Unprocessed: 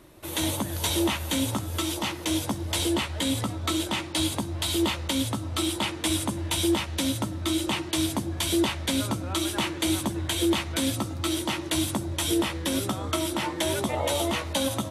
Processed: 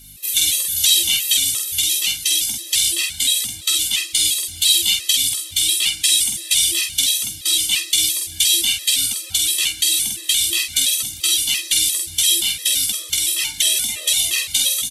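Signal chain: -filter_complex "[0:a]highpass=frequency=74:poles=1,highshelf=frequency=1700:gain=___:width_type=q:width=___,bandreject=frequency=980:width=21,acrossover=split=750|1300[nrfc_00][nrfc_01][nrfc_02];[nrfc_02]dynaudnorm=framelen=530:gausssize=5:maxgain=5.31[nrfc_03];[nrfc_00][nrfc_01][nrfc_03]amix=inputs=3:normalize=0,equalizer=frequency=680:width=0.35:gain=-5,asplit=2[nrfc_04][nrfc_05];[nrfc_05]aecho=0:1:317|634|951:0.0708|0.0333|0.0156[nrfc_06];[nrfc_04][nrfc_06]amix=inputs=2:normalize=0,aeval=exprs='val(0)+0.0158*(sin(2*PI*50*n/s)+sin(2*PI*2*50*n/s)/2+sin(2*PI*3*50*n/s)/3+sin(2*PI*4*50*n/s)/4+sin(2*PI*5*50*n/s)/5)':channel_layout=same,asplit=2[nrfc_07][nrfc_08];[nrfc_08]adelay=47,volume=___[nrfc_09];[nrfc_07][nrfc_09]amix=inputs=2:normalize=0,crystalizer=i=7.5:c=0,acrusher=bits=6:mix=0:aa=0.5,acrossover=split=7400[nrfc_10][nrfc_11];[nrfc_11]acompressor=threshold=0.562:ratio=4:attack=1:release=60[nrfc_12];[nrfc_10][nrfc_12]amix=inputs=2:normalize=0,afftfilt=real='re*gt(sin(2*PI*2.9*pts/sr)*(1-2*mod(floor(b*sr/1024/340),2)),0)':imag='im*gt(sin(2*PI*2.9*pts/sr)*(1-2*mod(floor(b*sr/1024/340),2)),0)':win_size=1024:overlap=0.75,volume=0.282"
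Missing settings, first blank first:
13.5, 1.5, 0.631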